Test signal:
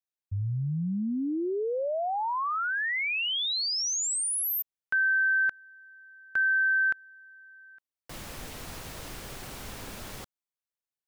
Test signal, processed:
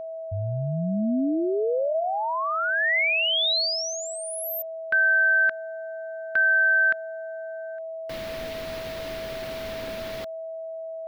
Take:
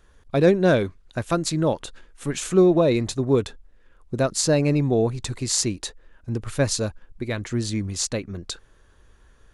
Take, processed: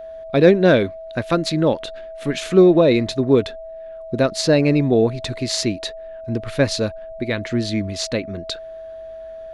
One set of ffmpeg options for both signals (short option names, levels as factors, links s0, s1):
-af "equalizer=f=250:t=o:w=1:g=5,equalizer=f=500:t=o:w=1:g=4,equalizer=f=2000:t=o:w=1:g=6,equalizer=f=4000:t=o:w=1:g=7,equalizer=f=8000:t=o:w=1:g=-9,aeval=exprs='val(0)+0.0251*sin(2*PI*650*n/s)':c=same"